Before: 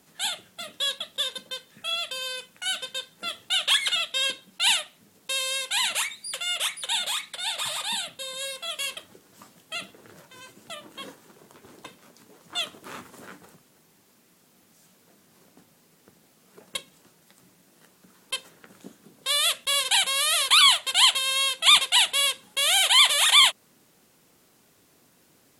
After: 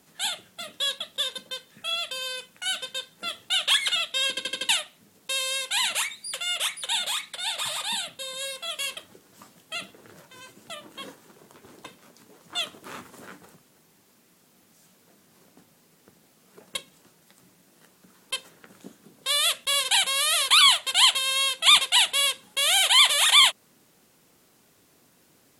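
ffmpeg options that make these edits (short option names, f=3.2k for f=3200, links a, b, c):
-filter_complex "[0:a]asplit=6[a][b][c][d][e][f];[a]atrim=end=4.372[g];[b]atrim=start=4.288:end=4.372[h];[c]atrim=start=4.288:end=4.372[i];[d]atrim=start=4.288:end=4.372[j];[e]atrim=start=4.288:end=4.372[k];[f]atrim=start=4.688[l];[g][h]acrossfade=d=0.004:c1=hsin:c2=hsin[m];[m][i]acrossfade=d=0.004:c1=hsin:c2=hsin[n];[n][j]acrossfade=d=0.004:c1=hsin:c2=hsin[o];[o][k]acrossfade=d=0.004:c1=hsin:c2=hsin[p];[p][l]acrossfade=d=0.004:c1=hsin:c2=hsin"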